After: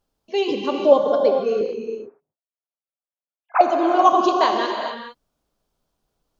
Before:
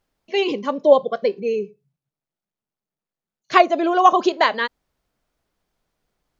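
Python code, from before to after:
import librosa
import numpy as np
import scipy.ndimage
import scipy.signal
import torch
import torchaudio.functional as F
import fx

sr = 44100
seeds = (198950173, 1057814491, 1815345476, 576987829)

y = fx.sine_speech(x, sr, at=(1.61, 3.61))
y = fx.peak_eq(y, sr, hz=2000.0, db=-10.0, octaves=0.73)
y = fx.rev_gated(y, sr, seeds[0], gate_ms=480, shape='flat', drr_db=2.0)
y = y * librosa.db_to_amplitude(-1.0)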